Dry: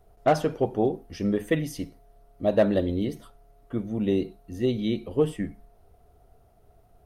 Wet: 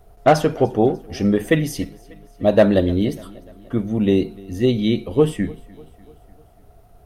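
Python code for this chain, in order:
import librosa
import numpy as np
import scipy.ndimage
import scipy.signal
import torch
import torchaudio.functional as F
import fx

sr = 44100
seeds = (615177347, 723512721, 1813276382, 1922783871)

y = fx.peak_eq(x, sr, hz=460.0, db=-2.0, octaves=2.2)
y = fx.echo_feedback(y, sr, ms=297, feedback_pct=55, wet_db=-23.5)
y = F.gain(torch.from_numpy(y), 9.0).numpy()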